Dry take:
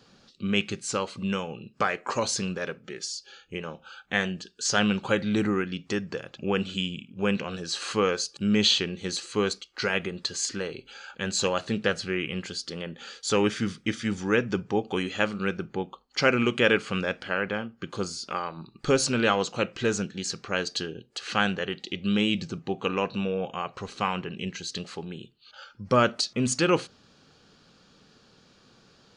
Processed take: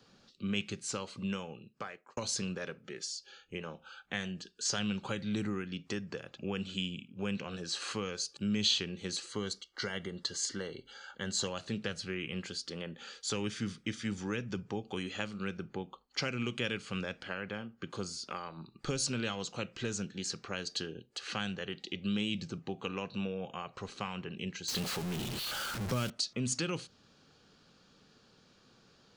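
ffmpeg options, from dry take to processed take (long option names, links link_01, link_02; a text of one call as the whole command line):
ffmpeg -i in.wav -filter_complex "[0:a]asettb=1/sr,asplit=3[link_01][link_02][link_03];[link_01]atrim=end=9.294[link_04];[link_02]atrim=start=9.29:end=11.48,asetpts=PTS-STARTPTS,afade=type=in:duration=0.004:curve=qsin,afade=type=out:start_time=2.186:duration=0.004:curve=qsin,asuperstop=centerf=2500:order=12:qfactor=5.9[link_05];[link_03]atrim=start=11.476[link_06];[link_04][link_05]acrossfade=duration=0.004:curve1=hsin:curve2=qsin[link_07];[link_07][link_06]acrossfade=duration=0.004:curve1=qsin:curve2=hsin,asettb=1/sr,asplit=3[link_08][link_09][link_10];[link_08]atrim=end=24.684[link_11];[link_09]atrim=start=24.68:end=26.1,asetpts=PTS-STARTPTS,afade=type=in:duration=0.004:curve=qsin,afade=type=out:start_time=1.416:duration=0.004:curve=qsin,aeval=exprs='val(0)+0.5*0.0473*sgn(val(0))':channel_layout=same[link_12];[link_10]atrim=start=26.096[link_13];[link_11][link_12]acrossfade=duration=0.004:curve1=hsin:curve2=qsin[link_14];[link_14][link_13]acrossfade=duration=0.004:curve1=qsin:curve2=hsin,asplit=2[link_15][link_16];[link_15]atrim=end=2.17,asetpts=PTS-STARTPTS,afade=type=out:start_time=1.25:duration=0.92[link_17];[link_16]atrim=start=2.17,asetpts=PTS-STARTPTS,afade=type=in:duration=0.004:curve=hsin[link_18];[link_17][link_18]concat=n=2:v=0:a=1,acrossover=split=190|3000[link_19][link_20][link_21];[link_20]acompressor=threshold=-31dB:ratio=6[link_22];[link_19][link_22][link_21]amix=inputs=3:normalize=0,volume=-5.5dB" out.wav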